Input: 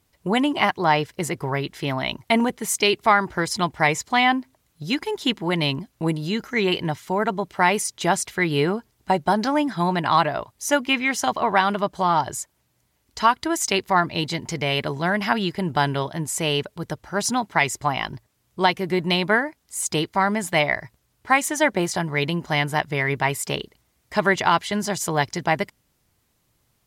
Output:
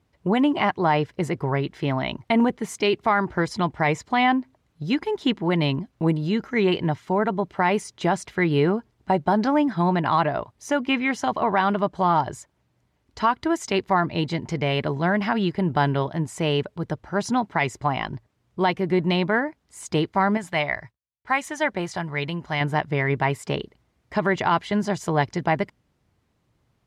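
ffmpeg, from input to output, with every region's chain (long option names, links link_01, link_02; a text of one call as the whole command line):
ffmpeg -i in.wav -filter_complex "[0:a]asettb=1/sr,asplit=3[link_01][link_02][link_03];[link_01]atrim=end=20.374[link_04];[link_02]atrim=start=20.37:end=22.61,asetpts=PTS-STARTPTS,afade=type=in:duration=0.004:curve=qsin,afade=type=out:start_time=2.236:duration=0.004:curve=qsin,agate=range=-33dB:threshold=-45dB:ratio=3:release=100:detection=peak,equalizer=frequency=280:width=0.43:gain=-8[link_05];[link_03]atrim=start=22.606[link_06];[link_04][link_05]acrossfade=duration=0.004:curve1=hsin:curve2=qsin[link_07];[link_07][link_06]acrossfade=duration=0.004:curve1=qsin:curve2=hsin,highpass=frequency=330:poles=1,aemphasis=mode=reproduction:type=riaa,alimiter=level_in=9dB:limit=-1dB:release=50:level=0:latency=1,volume=-9dB" out.wav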